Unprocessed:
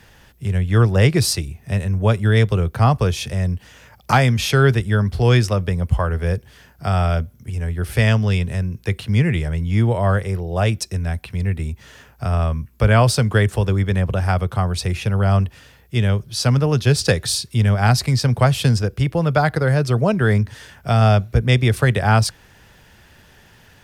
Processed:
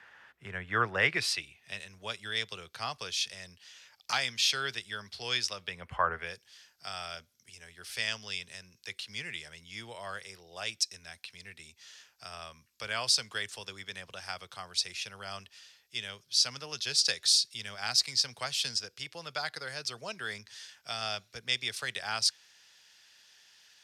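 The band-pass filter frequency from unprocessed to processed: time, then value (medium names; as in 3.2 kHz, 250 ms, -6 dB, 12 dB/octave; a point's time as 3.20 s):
band-pass filter, Q 1.6
0.84 s 1.5 kHz
1.90 s 4.5 kHz
5.57 s 4.5 kHz
6.10 s 1.1 kHz
6.36 s 5 kHz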